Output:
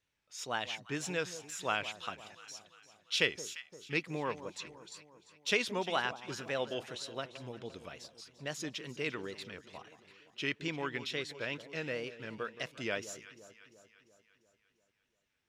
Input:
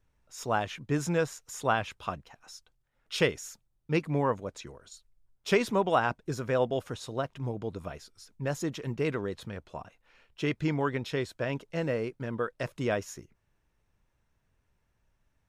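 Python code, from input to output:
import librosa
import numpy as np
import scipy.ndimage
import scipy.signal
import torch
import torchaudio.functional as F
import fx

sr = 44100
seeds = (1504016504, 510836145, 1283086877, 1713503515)

y = fx.weighting(x, sr, curve='D')
y = fx.wow_flutter(y, sr, seeds[0], rate_hz=2.1, depth_cents=96.0)
y = fx.echo_alternate(y, sr, ms=173, hz=1100.0, feedback_pct=72, wet_db=-13.0)
y = y * 10.0 ** (-8.5 / 20.0)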